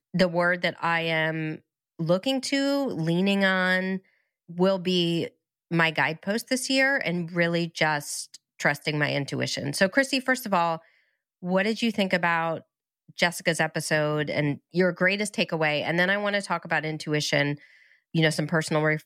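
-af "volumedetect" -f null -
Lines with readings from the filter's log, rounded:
mean_volume: -26.0 dB
max_volume: -9.0 dB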